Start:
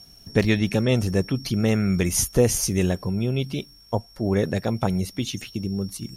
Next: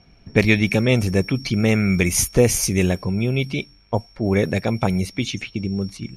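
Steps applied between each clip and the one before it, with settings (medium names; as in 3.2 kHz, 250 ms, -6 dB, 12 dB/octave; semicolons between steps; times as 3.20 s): peaking EQ 2.3 kHz +12 dB 0.22 oct; level-controlled noise filter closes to 2.2 kHz, open at -18.5 dBFS; trim +3 dB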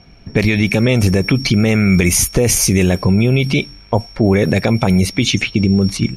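level rider gain up to 8 dB; loudness maximiser +11 dB; trim -3 dB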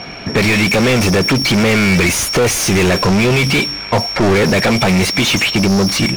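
overdrive pedal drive 33 dB, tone 3.4 kHz, clips at -3.5 dBFS; trim -2.5 dB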